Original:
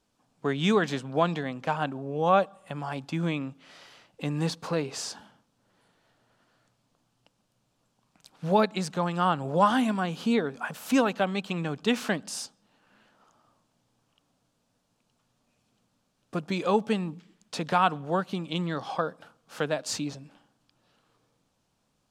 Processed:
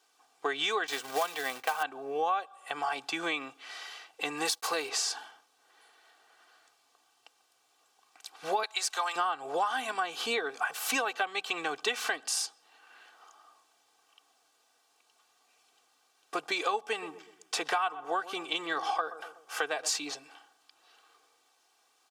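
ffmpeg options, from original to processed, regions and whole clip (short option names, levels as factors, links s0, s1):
-filter_complex "[0:a]asettb=1/sr,asplit=3[s0][s1][s2];[s0]atrim=end=0.874[s3];[s1]atrim=start=0.87:end=1.83,asetpts=PTS-STARTPTS,afade=t=in:d=0.004:c=qsin,afade=t=out:st=0.956:d=0.004:c=qsin,bandreject=f=330:w=7.2,acrusher=bits=3:mode=log:mix=0:aa=0.000001,agate=range=0.0224:threshold=0.01:ratio=3:release=100:detection=peak[s4];[s2]atrim=start=1.826[s5];[s3][s4]acrossfade=d=0.004:c1=hsin:c2=qsin[s6];[s6][s5]acrossfade=d=0.004:c1=qsin:c2=hsin,asettb=1/sr,asplit=3[s7][s8][s9];[s7]atrim=end=4.454[s10];[s8]atrim=start=4.45:end=4.89,asetpts=PTS-STARTPTS,afade=t=in:d=0.004:c=qsin,afade=t=out:st=0.436:d=0.004:c=qsin,aemphasis=mode=production:type=50fm,aeval=exprs='sgn(val(0))*max(abs(val(0))-0.00251,0)':c=same[s11];[s9]atrim=start=4.886[s12];[s10][s11]acrossfade=d=0.004:c1=hsin:c2=qsin[s13];[s13][s12]acrossfade=d=0.004:c1=qsin:c2=hsin,asettb=1/sr,asplit=3[s14][s15][s16];[s14]atrim=end=8.634[s17];[s15]atrim=start=8.63:end=9.16,asetpts=PTS-STARTPTS,afade=t=in:d=0.004:c=qsin,afade=t=out:st=0.526:d=0.004:c=qsin,highpass=680,highshelf=f=3900:g=8[s18];[s16]atrim=start=9.156[s19];[s17][s18]acrossfade=d=0.004:c1=hsin:c2=qsin[s20];[s20][s19]acrossfade=d=0.004:c1=qsin:c2=hsin,asettb=1/sr,asplit=3[s21][s22][s23];[s21]atrim=end=16.854[s24];[s22]atrim=start=16.85:end=19.89,asetpts=PTS-STARTPTS,afade=t=in:d=0.004:c=qsin,afade=t=out:st=3.036:d=0.004:c=qsin,equalizer=f=4100:w=5.1:g=-6.5,asplit=2[s25][s26];[s26]adelay=123,lowpass=f=880:p=1,volume=0.178,asplit=2[s27][s28];[s28]adelay=123,lowpass=f=880:p=1,volume=0.51,asplit=2[s29][s30];[s30]adelay=123,lowpass=f=880:p=1,volume=0.51,asplit=2[s31][s32];[s32]adelay=123,lowpass=f=880:p=1,volume=0.51,asplit=2[s33][s34];[s34]adelay=123,lowpass=f=880:p=1,volume=0.51[s35];[s25][s27][s29][s31][s33][s35]amix=inputs=6:normalize=0,atrim=end_sample=134064[s36];[s23]atrim=start=19.886[s37];[s24][s36]acrossfade=d=0.004:c1=hsin:c2=qsin[s38];[s38][s37]acrossfade=d=0.004:c1=qsin:c2=hsin,highpass=730,aecho=1:1:2.6:0.72,acompressor=threshold=0.02:ratio=6,volume=2.11"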